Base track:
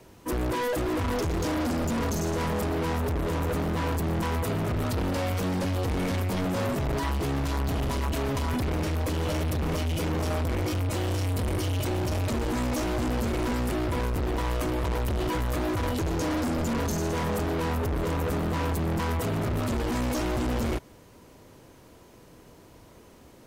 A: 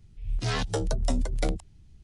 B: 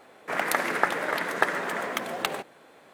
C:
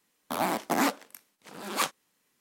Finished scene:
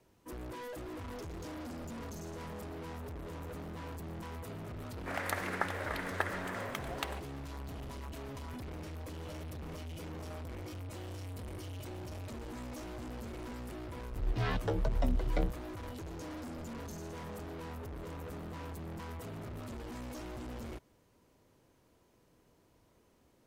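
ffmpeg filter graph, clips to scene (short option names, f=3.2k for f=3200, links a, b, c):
-filter_complex "[0:a]volume=-16dB[a];[1:a]lowpass=2.6k[b];[2:a]atrim=end=2.93,asetpts=PTS-STARTPTS,volume=-10.5dB,afade=t=in:d=0.004:c=hsin,afade=t=out:st=2.926:d=0.004:c=hsin,adelay=4780[c];[b]atrim=end=2.03,asetpts=PTS-STARTPTS,volume=-4.5dB,afade=t=in:d=0.004:c=hsin,afade=t=out:st=2.026:d=0.004:c=hsin,adelay=13940[d];[a][c][d]amix=inputs=3:normalize=0"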